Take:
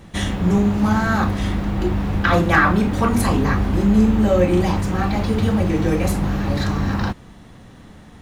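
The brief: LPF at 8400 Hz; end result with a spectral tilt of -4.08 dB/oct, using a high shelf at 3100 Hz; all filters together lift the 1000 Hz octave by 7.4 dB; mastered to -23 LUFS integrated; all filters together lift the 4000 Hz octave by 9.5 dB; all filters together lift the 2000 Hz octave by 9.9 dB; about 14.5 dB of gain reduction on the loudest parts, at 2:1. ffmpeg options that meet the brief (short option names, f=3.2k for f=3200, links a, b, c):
-af "lowpass=8.4k,equalizer=f=1k:t=o:g=6,equalizer=f=2k:t=o:g=8,highshelf=f=3.1k:g=6,equalizer=f=4k:t=o:g=4.5,acompressor=threshold=-30dB:ratio=2,volume=2.5dB"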